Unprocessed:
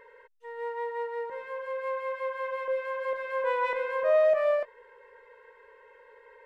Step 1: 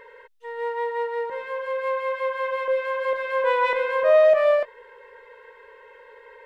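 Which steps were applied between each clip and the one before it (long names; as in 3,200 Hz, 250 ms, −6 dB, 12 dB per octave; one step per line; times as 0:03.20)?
parametric band 3,500 Hz +4.5 dB 0.83 octaves
level +6.5 dB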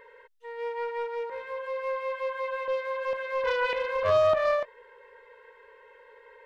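highs frequency-modulated by the lows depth 0.3 ms
level −5.5 dB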